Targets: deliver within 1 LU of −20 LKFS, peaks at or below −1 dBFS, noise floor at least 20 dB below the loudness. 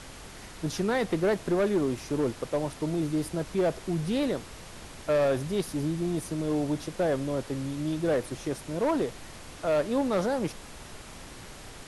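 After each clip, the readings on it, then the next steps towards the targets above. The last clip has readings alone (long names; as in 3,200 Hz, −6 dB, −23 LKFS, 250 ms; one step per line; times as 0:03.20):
share of clipped samples 1.3%; peaks flattened at −20.0 dBFS; background noise floor −45 dBFS; target noise floor −49 dBFS; integrated loudness −29.0 LKFS; sample peak −20.0 dBFS; target loudness −20.0 LKFS
→ clipped peaks rebuilt −20 dBFS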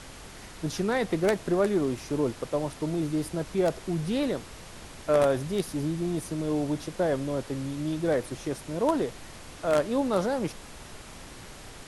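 share of clipped samples 0.0%; background noise floor −45 dBFS; target noise floor −49 dBFS
→ noise reduction from a noise print 6 dB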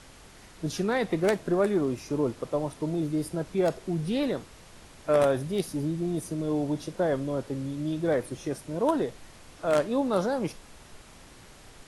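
background noise floor −51 dBFS; integrated loudness −28.5 LKFS; sample peak −11.0 dBFS; target loudness −20.0 LKFS
→ level +8.5 dB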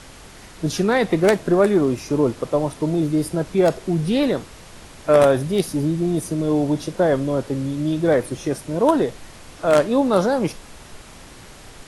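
integrated loudness −20.0 LKFS; sample peak −2.5 dBFS; background noise floor −42 dBFS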